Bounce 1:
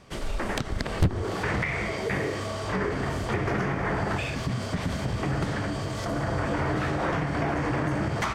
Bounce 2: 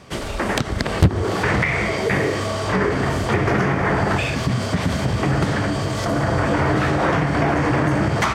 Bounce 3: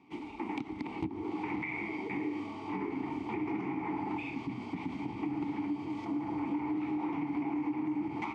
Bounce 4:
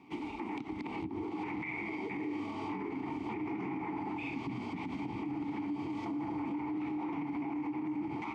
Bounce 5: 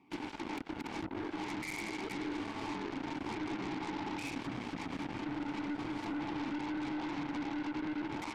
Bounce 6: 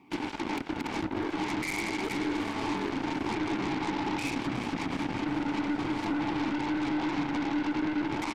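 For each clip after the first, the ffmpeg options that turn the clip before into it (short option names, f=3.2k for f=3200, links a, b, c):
-af "highpass=56,volume=8.5dB"
-filter_complex "[0:a]asplit=3[a][b][c];[a]bandpass=f=300:t=q:w=8,volume=0dB[d];[b]bandpass=f=870:t=q:w=8,volume=-6dB[e];[c]bandpass=f=2.24k:t=q:w=8,volume=-9dB[f];[d][e][f]amix=inputs=3:normalize=0,acompressor=threshold=-28dB:ratio=6,volume=-2.5dB"
-af "alimiter=level_in=10dB:limit=-24dB:level=0:latency=1:release=101,volume=-10dB,volume=4dB"
-af "aeval=exprs='0.0335*(cos(1*acos(clip(val(0)/0.0335,-1,1)))-cos(1*PI/2))+0.00237*(cos(4*acos(clip(val(0)/0.0335,-1,1)))-cos(4*PI/2))+0.00133*(cos(5*acos(clip(val(0)/0.0335,-1,1)))-cos(5*PI/2))+0.00119*(cos(6*acos(clip(val(0)/0.0335,-1,1)))-cos(6*PI/2))+0.00841*(cos(7*acos(clip(val(0)/0.0335,-1,1)))-cos(7*PI/2))':c=same,volume=-2dB"
-af "aecho=1:1:363|726|1089|1452|1815|2178:0.211|0.118|0.0663|0.0371|0.0208|0.0116,volume=7.5dB"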